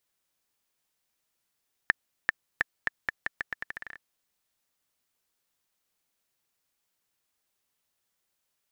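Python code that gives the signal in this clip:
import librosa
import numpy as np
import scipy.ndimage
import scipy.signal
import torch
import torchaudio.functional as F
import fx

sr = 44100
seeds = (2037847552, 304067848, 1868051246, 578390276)

y = fx.bouncing_ball(sr, first_gap_s=0.39, ratio=0.82, hz=1770.0, decay_ms=18.0, level_db=-6.0)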